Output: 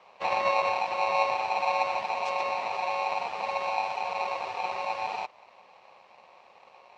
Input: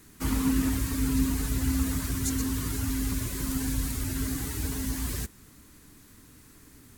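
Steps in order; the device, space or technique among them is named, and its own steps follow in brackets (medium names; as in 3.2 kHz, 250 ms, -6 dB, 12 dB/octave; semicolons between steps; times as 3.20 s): ring modulator pedal into a guitar cabinet (polarity switched at an audio rate 820 Hz; cabinet simulation 95–3900 Hz, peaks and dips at 130 Hz -6 dB, 280 Hz -7 dB, 3.6 kHz -4 dB)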